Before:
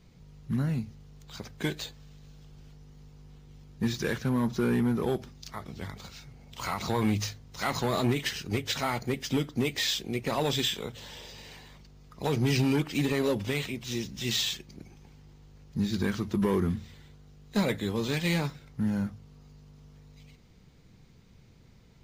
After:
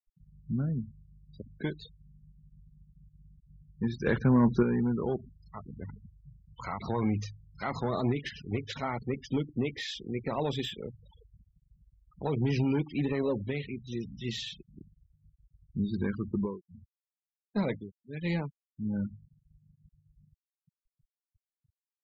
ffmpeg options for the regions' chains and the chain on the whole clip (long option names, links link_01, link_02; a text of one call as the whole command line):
ffmpeg -i in.wav -filter_complex "[0:a]asettb=1/sr,asplit=3[link_01][link_02][link_03];[link_01]atrim=end=4.064[link_04];[link_02]atrim=start=4.06:end=4.63,asetpts=PTS-STARTPTS,afade=type=in:duration=0.004:curve=qsin,afade=type=out:start_time=0.566:duration=0.004:curve=qsin,highshelf=frequency=9400:gain=-7.5,acontrast=80[link_05];[link_03]atrim=start=4.626[link_06];[link_04][link_05]acrossfade=duration=0.004:curve1=hsin:curve2=qsin[link_07];[link_07][link_06]acrossfade=duration=0.004:curve1=qsin:curve2=hsin,asettb=1/sr,asplit=3[link_08][link_09][link_10];[link_08]atrim=end=16.324[link_11];[link_09]atrim=start=16.32:end=19.1,asetpts=PTS-STARTPTS,afade=type=in:duration=0.004:curve=qsin,afade=type=out:start_time=2.776:duration=0.004:curve=qsin,agate=range=-33dB:threshold=-44dB:ratio=3:release=100:detection=peak,tremolo=f=1.5:d=0.99[link_12];[link_10]atrim=start=19.096[link_13];[link_11][link_12]acrossfade=duration=0.004:curve1=hsin:curve2=qsin[link_14];[link_14][link_13]acrossfade=duration=0.004:curve1=qsin:curve2=hsin,highshelf=frequency=5000:gain=-2.5,afftfilt=real='re*gte(hypot(re,im),0.0224)':imag='im*gte(hypot(re,im),0.0224)':win_size=1024:overlap=0.75,highshelf=frequency=2400:gain=-9,volume=-2dB" out.wav